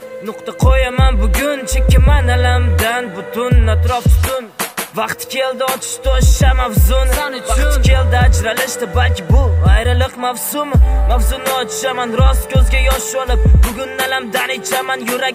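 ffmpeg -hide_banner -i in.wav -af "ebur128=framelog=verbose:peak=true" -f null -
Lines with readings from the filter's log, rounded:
Integrated loudness:
  I:         -14.5 LUFS
  Threshold: -24.6 LUFS
Loudness range:
  LRA:         1.8 LU
  Threshold: -34.5 LUFS
  LRA low:   -15.5 LUFS
  LRA high:  -13.7 LUFS
True peak:
  Peak:       -1.2 dBFS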